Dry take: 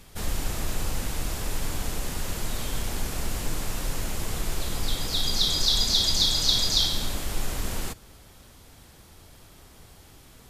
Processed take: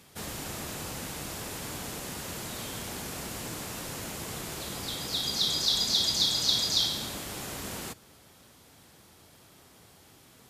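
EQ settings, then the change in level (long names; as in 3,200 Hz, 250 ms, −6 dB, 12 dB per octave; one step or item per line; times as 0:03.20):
high-pass filter 120 Hz 12 dB per octave
−3.0 dB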